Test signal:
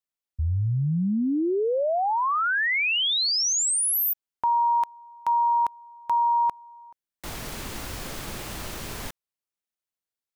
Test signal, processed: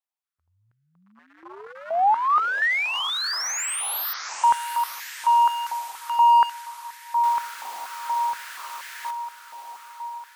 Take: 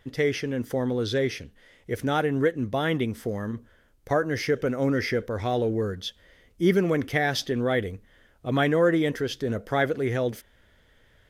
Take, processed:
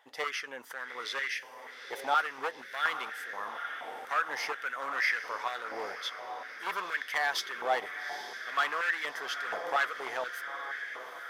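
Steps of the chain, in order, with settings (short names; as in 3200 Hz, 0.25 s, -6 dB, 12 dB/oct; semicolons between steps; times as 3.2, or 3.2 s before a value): diffused feedback echo 0.851 s, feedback 59%, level -10 dB; overloaded stage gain 20.5 dB; stepped high-pass 4.2 Hz 820–1700 Hz; gain -4.5 dB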